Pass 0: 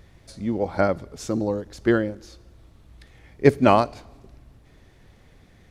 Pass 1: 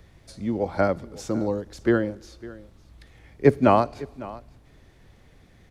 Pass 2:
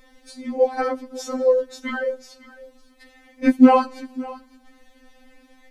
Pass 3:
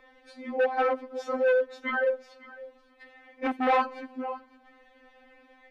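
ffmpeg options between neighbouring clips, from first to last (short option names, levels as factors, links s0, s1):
-filter_complex "[0:a]acrossover=split=200|490|2000[s0][s1][s2][s3];[s3]alimiter=level_in=1.68:limit=0.0631:level=0:latency=1:release=202,volume=0.596[s4];[s0][s1][s2][s4]amix=inputs=4:normalize=0,aecho=1:1:554:0.112,volume=0.891"
-af "afftfilt=real='re*3.46*eq(mod(b,12),0)':imag='im*3.46*eq(mod(b,12),0)':win_size=2048:overlap=0.75,volume=2"
-filter_complex "[0:a]volume=10,asoftclip=hard,volume=0.1,acrossover=split=330 3100:gain=0.141 1 0.0794[s0][s1][s2];[s0][s1][s2]amix=inputs=3:normalize=0,volume=1.12"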